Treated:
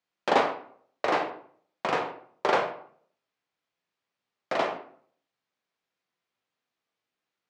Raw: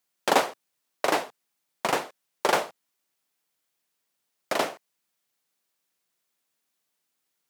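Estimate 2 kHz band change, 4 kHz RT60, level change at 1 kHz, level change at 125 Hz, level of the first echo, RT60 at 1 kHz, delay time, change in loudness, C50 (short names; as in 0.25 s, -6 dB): -1.5 dB, 0.40 s, 0.0 dB, 0.0 dB, none, 0.55 s, none, -1.5 dB, 8.5 dB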